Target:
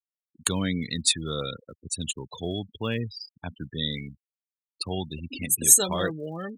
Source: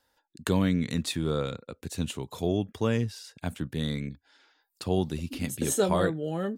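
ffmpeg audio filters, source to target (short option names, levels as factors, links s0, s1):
-af "afftfilt=real='re*gte(hypot(re,im),0.02)':imag='im*gte(hypot(re,im),0.02)':win_size=1024:overlap=0.75,aphaser=in_gain=1:out_gain=1:delay=1.1:decay=0.25:speed=1.3:type=sinusoidal,crystalizer=i=9.5:c=0,volume=0.531"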